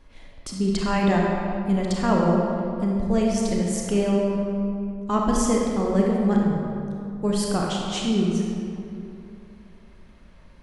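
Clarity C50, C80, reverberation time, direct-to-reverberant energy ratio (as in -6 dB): -0.5 dB, 1.0 dB, 2.7 s, -2.0 dB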